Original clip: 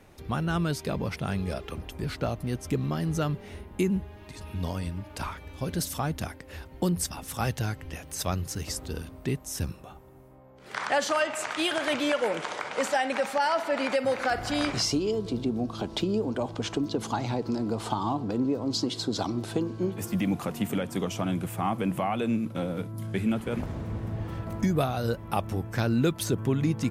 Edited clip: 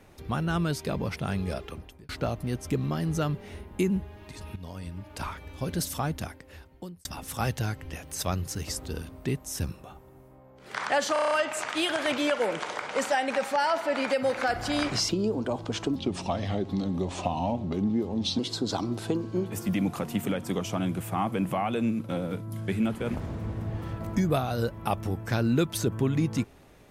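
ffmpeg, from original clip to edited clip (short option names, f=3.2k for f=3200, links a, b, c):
-filter_complex "[0:a]asplit=13[a][b][c][d][e][f][g][h][i][j][k][l][m];[a]atrim=end=2.09,asetpts=PTS-STARTPTS,afade=t=out:st=1.58:d=0.51[n];[b]atrim=start=2.09:end=4.56,asetpts=PTS-STARTPTS,afade=t=in:d=0.004:c=hsin,afade=t=out:st=2.466:d=0.004:c=hsin:silence=0.223872[o];[c]atrim=start=4.56:end=7.05,asetpts=PTS-STARTPTS,afade=t=in:d=0.75:silence=0.223872,afade=t=out:st=1.5:d=0.99[p];[d]atrim=start=7.05:end=11.162,asetpts=PTS-STARTPTS,afade=t=in:d=0.004:c=hsin[q];[e]atrim=start=11.128:end=11.162[r];[f]atrim=start=11.128:end=11.162[s];[g]atrim=start=11.128:end=11.162[t];[h]atrim=start=11.128:end=11.162[u];[i]atrim=start=11.128:end=11.162[v];[j]atrim=start=11.128:end=14.912[w];[k]atrim=start=15.988:end=16.854[x];[l]atrim=start=16.85:end=18.85,asetpts=PTS-STARTPTS,asetrate=36162,aresample=44100[y];[m]atrim=start=18.846[z];[n][o][p][q]concat=n=4:v=0:a=1[aa];[aa][r]acrossfade=d=0.004:c1=hsin:c2=hsin[ab];[ab][s]acrossfade=d=0.004:c1=hsin:c2=hsin[ac];[ac][t]acrossfade=d=0.004:c1=hsin:c2=hsin[ad];[ad][u]acrossfade=d=0.004:c1=hsin:c2=hsin[ae];[ae][v]acrossfade=d=0.004:c1=hsin:c2=hsin[af];[af][w]acrossfade=d=0.004:c1=hsin:c2=hsin[ag];[ag][x]acrossfade=d=0.004:c1=hsin:c2=hsin[ah];[ah][y]acrossfade=d=0.004:c1=hsin:c2=hsin[ai];[ai][z]acrossfade=d=0.004:c1=hsin:c2=hsin"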